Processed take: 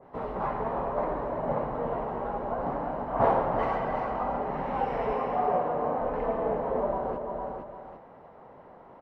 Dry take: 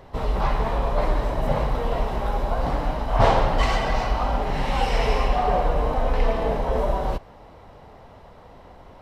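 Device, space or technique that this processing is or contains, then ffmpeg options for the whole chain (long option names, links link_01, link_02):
ducked delay: -filter_complex "[0:a]asettb=1/sr,asplit=3[link_01][link_02][link_03];[link_01]atrim=end=5.134[link_04];[link_02]atrim=start=5.13:end=6.01,asetpts=PTS-STARTPTS,afade=type=in:duration=0.004:curve=qsin,afade=type=out:start_time=0.876:duration=0.004:curve=qsin,highpass=90[link_05];[link_03]atrim=start=6.006[link_06];[link_04][link_05]acrossfade=duration=0.004:curve1=hsin:curve2=qsin[link_07];[link_07][link_06]acrossfade=duration=0.004:curve1=qsin:curve2=hsin,acrossover=split=150 2000:gain=0.112 1 0.0794[link_08][link_09][link_10];[link_08][link_09][link_10]amix=inputs=3:normalize=0,asplit=3[link_11][link_12][link_13];[link_12]adelay=457,volume=-5.5dB[link_14];[link_13]apad=whole_len=417782[link_15];[link_14][link_15]sidechaincompress=threshold=-37dB:ratio=8:attack=16:release=219[link_16];[link_11][link_16]amix=inputs=2:normalize=0,aecho=1:1:341:0.376,adynamicequalizer=threshold=0.01:dfrequency=1600:dqfactor=0.7:tfrequency=1600:tqfactor=0.7:attack=5:release=100:ratio=0.375:range=2.5:mode=cutabove:tftype=highshelf,volume=-3.5dB"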